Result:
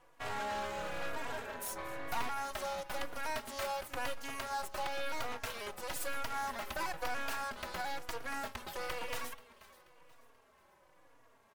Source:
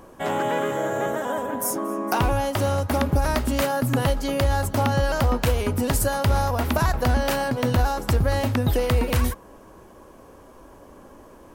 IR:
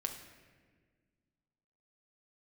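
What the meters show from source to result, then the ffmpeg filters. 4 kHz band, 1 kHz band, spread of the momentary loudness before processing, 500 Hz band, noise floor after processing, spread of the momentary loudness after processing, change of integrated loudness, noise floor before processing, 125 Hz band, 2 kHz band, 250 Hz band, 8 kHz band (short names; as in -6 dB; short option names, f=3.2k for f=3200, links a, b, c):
-11.5 dB, -12.5 dB, 4 LU, -18.0 dB, -66 dBFS, 4 LU, -16.5 dB, -48 dBFS, -32.0 dB, -10.0 dB, -25.0 dB, -13.5 dB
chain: -filter_complex "[0:a]highpass=700,highshelf=f=5.2k:g=-6,asoftclip=type=tanh:threshold=-24.5dB,aeval=exprs='0.0596*(cos(1*acos(clip(val(0)/0.0596,-1,1)))-cos(1*PI/2))+0.00668*(cos(4*acos(clip(val(0)/0.0596,-1,1)))-cos(4*PI/2))+0.00473*(cos(7*acos(clip(val(0)/0.0596,-1,1)))-cos(7*PI/2))':c=same,aeval=exprs='max(val(0),0)':c=same,asplit=2[a][b];[b]aecho=0:1:483|966|1449:0.119|0.0464|0.0181[c];[a][c]amix=inputs=2:normalize=0,asplit=2[d][e];[e]adelay=3.6,afreqshift=-1[f];[d][f]amix=inputs=2:normalize=1,volume=2dB"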